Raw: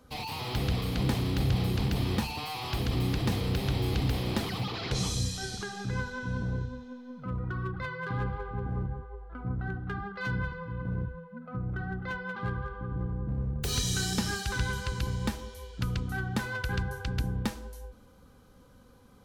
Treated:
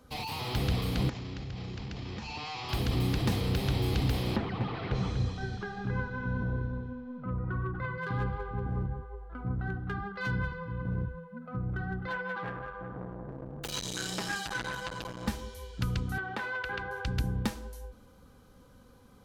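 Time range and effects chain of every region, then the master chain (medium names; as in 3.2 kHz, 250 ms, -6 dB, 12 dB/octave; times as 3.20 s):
1.09–2.69 s: compression 10:1, threshold -32 dBFS + rippled Chebyshev low-pass 7.3 kHz, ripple 3 dB
4.36–7.98 s: low-pass 2 kHz + delay 243 ms -8 dB
12.07–15.28 s: tone controls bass -9 dB, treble -5 dB + comb 6.1 ms, depth 91% + transformer saturation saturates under 1.7 kHz
16.18–17.05 s: three-band isolator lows -19 dB, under 350 Hz, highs -17 dB, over 3.6 kHz + level flattener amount 50%
whole clip: none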